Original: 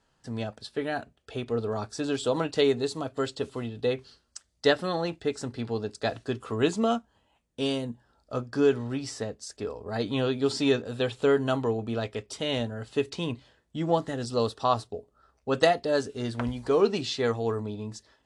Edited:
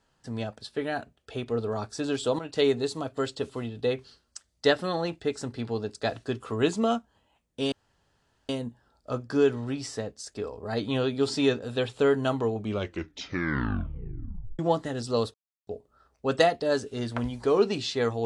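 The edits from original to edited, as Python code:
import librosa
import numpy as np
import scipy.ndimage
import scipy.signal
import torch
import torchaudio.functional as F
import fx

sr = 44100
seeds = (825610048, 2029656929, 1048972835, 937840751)

y = fx.edit(x, sr, fx.fade_in_from(start_s=2.39, length_s=0.25, floor_db=-13.0),
    fx.insert_room_tone(at_s=7.72, length_s=0.77),
    fx.tape_stop(start_s=11.77, length_s=2.05),
    fx.silence(start_s=14.57, length_s=0.33), tone=tone)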